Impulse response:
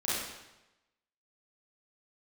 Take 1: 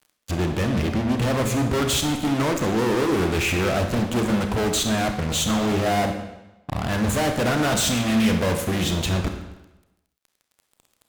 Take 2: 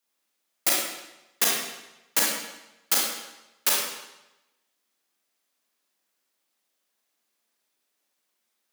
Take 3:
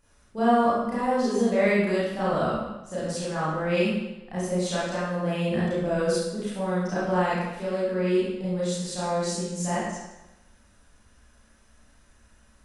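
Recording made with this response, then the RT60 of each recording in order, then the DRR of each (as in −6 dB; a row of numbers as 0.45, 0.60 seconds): 3; 1.0, 1.0, 1.0 seconds; 5.0, −4.0, −10.0 decibels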